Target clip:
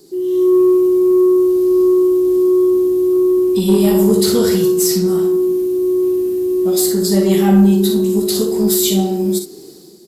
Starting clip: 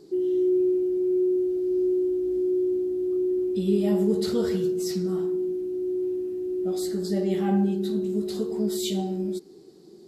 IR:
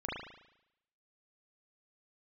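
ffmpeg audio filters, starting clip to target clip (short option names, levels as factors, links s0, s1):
-filter_complex "[0:a]aemphasis=mode=production:type=75fm,acrossover=split=390|910|2300[s0][s1][s2][s3];[s3]alimiter=limit=0.119:level=0:latency=1:release=480[s4];[s0][s1][s2][s4]amix=inputs=4:normalize=0,dynaudnorm=f=110:g=7:m=2.66,asoftclip=type=tanh:threshold=0.376,aecho=1:1:41|61:0.299|0.355,volume=1.5"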